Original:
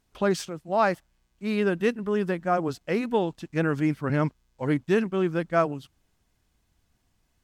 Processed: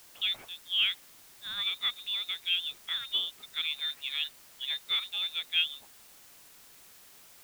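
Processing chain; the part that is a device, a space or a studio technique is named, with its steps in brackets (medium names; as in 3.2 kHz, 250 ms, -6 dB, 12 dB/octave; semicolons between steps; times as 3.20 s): scrambled radio voice (band-pass 370–3000 Hz; frequency inversion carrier 3.9 kHz; white noise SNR 20 dB); trim -5 dB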